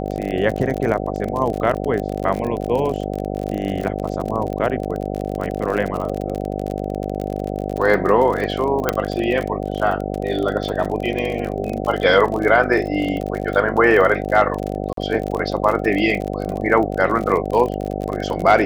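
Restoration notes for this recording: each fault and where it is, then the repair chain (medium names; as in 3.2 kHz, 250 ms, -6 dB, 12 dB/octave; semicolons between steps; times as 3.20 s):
buzz 50 Hz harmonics 15 -25 dBFS
crackle 42 per s -23 dBFS
8.89 s: pop -2 dBFS
14.93–14.97 s: dropout 43 ms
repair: de-click; de-hum 50 Hz, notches 15; interpolate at 14.93 s, 43 ms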